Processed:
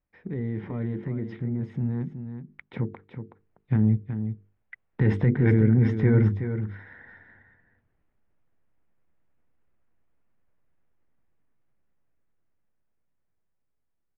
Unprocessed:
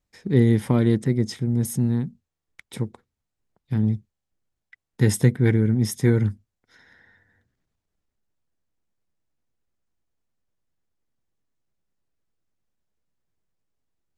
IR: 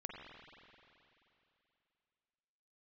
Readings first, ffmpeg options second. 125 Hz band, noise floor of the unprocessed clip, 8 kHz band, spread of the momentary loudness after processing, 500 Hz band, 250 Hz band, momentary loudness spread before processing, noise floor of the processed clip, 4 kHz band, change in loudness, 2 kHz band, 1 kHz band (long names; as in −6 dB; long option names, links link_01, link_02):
−2.0 dB, −83 dBFS, below −35 dB, 21 LU, −4.0 dB, −3.0 dB, 13 LU, −75 dBFS, below −15 dB, −3.5 dB, −2.5 dB, −4.5 dB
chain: -filter_complex "[0:a]lowpass=frequency=2400:width=0.5412,lowpass=frequency=2400:width=1.3066,bandreject=frequency=50:width_type=h:width=6,bandreject=frequency=100:width_type=h:width=6,bandreject=frequency=150:width_type=h:width=6,bandreject=frequency=200:width_type=h:width=6,bandreject=frequency=250:width_type=h:width=6,bandreject=frequency=300:width_type=h:width=6,bandreject=frequency=350:width_type=h:width=6,bandreject=frequency=400:width_type=h:width=6,bandreject=frequency=450:width_type=h:width=6,asplit=2[link_01][link_02];[link_02]acompressor=threshold=-27dB:ratio=6,volume=-2.5dB[link_03];[link_01][link_03]amix=inputs=2:normalize=0,alimiter=limit=-15dB:level=0:latency=1:release=24,dynaudnorm=framelen=560:gausssize=11:maxgain=11dB,asplit=2[link_04][link_05];[link_05]aecho=0:1:373:0.355[link_06];[link_04][link_06]amix=inputs=2:normalize=0,volume=-8dB"